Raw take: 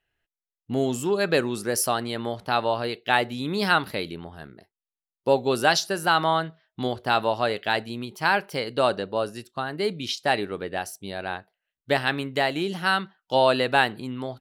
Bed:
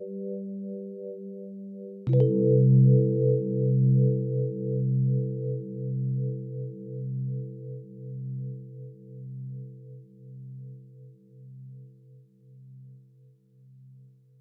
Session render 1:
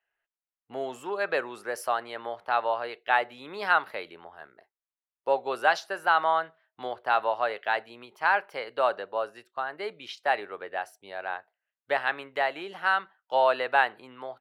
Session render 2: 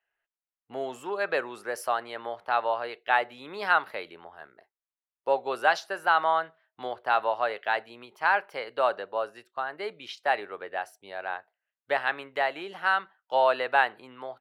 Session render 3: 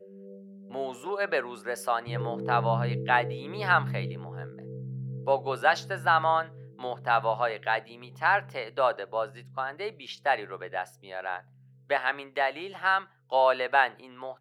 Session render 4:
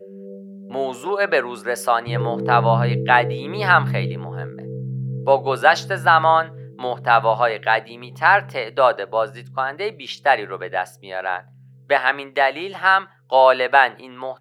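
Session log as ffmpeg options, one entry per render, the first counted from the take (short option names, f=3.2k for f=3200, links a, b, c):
-filter_complex "[0:a]acrossover=split=510 2400:gain=0.0631 1 0.141[a][b][c];[a][b][c]amix=inputs=3:normalize=0"
-af anull
-filter_complex "[1:a]volume=-12dB[a];[0:a][a]amix=inputs=2:normalize=0"
-af "volume=9.5dB,alimiter=limit=-1dB:level=0:latency=1"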